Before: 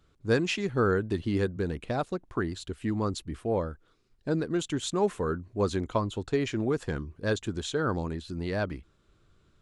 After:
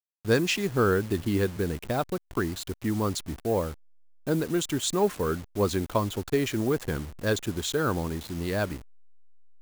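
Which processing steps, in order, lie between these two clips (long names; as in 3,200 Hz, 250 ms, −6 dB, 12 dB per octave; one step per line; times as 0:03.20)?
hold until the input has moved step −42 dBFS
high-shelf EQ 5,800 Hz +8.5 dB
in parallel at −5 dB: slack as between gear wheels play −43.5 dBFS
on the sum: level −2 dB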